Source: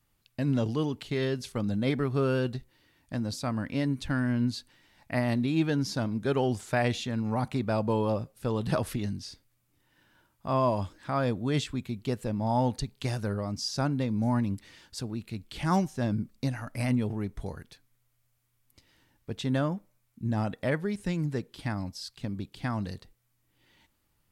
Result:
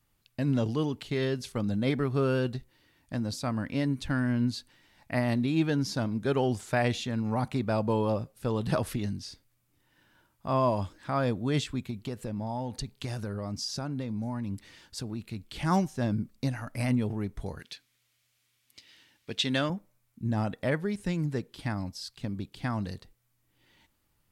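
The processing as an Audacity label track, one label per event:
11.900000	15.500000	downward compressor, threshold −29 dBFS
17.590000	19.700000	meter weighting curve D

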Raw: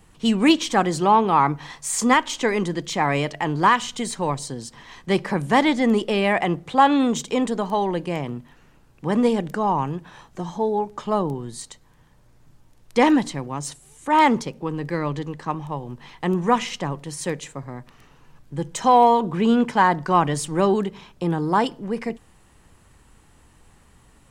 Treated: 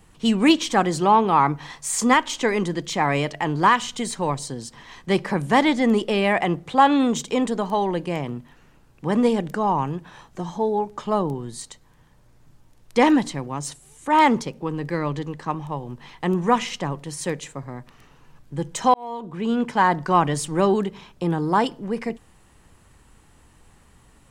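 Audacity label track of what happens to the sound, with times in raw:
18.940000	19.950000	fade in linear

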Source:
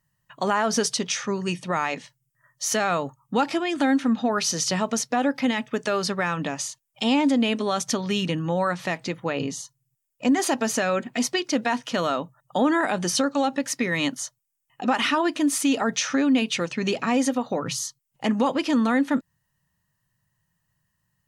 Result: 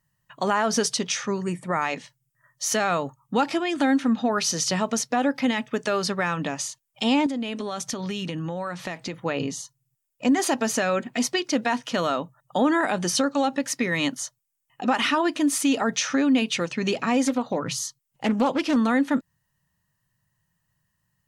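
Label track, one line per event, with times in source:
1.430000	1.820000	gain on a spectral selection 2,400–6,800 Hz −13 dB
7.260000	9.140000	downward compressor 5 to 1, threshold −26 dBFS
17.240000	18.760000	highs frequency-modulated by the lows depth 0.28 ms

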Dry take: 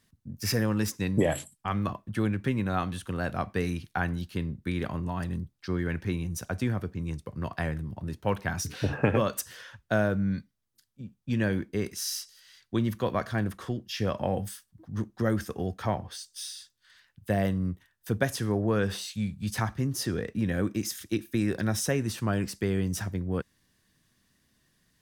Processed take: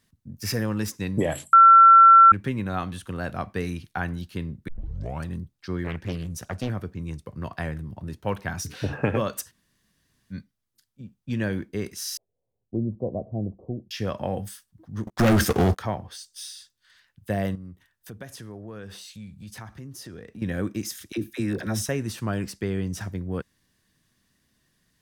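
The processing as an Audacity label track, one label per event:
1.530000	2.320000	beep over 1,350 Hz −8 dBFS
4.680000	4.680000	tape start 0.58 s
5.840000	6.700000	highs frequency-modulated by the lows depth 0.77 ms
9.490000	10.330000	fill with room tone, crossfade 0.06 s
12.170000	13.910000	Butterworth low-pass 710 Hz 48 dB per octave
15.070000	15.790000	leveller curve on the samples passes 5
17.550000	20.420000	downward compressor 2.5 to 1, threshold −42 dBFS
21.120000	21.890000	all-pass dispersion lows, late by 56 ms, half as late at 540 Hz
22.520000	23.010000	high-shelf EQ 8,000 Hz −7.5 dB

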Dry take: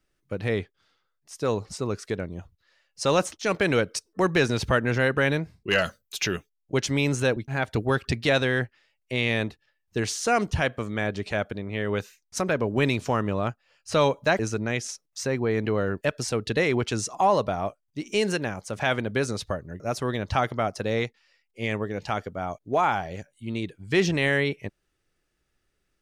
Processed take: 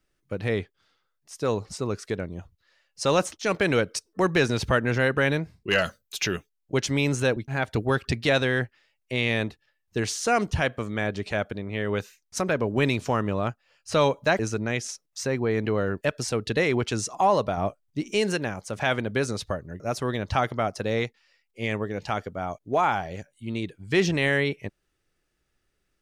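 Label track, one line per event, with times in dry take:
17.570000	18.110000	low-shelf EQ 440 Hz +5.5 dB

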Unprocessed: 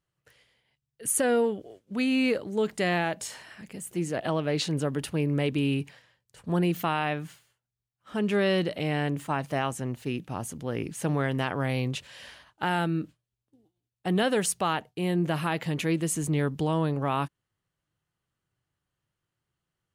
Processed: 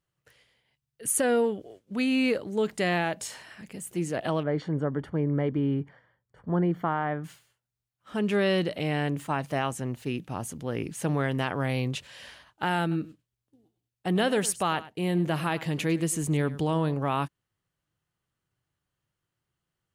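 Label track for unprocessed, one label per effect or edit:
4.430000	7.240000	Savitzky-Golay smoothing over 41 samples
12.810000	16.940000	single-tap delay 101 ms −17 dB

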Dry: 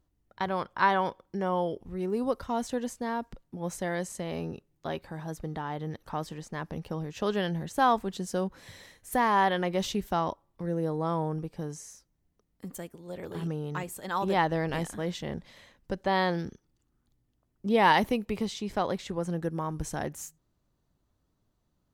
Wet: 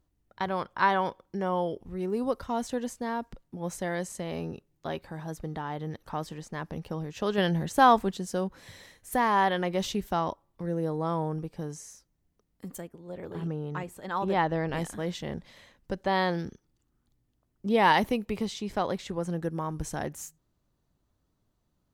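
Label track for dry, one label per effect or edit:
7.380000	8.110000	clip gain +4.5 dB
12.800000	14.760000	high-shelf EQ 2,800 Hz → 5,700 Hz −11.5 dB

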